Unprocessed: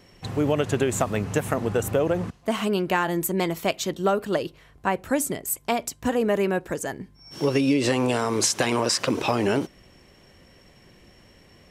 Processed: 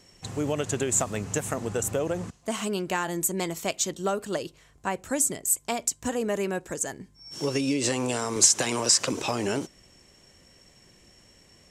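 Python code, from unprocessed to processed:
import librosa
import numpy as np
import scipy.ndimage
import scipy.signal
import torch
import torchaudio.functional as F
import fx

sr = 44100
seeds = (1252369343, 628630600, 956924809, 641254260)

y = fx.peak_eq(x, sr, hz=7300.0, db=13.5, octaves=0.97)
y = fx.band_squash(y, sr, depth_pct=40, at=(8.36, 9.13))
y = F.gain(torch.from_numpy(y), -5.5).numpy()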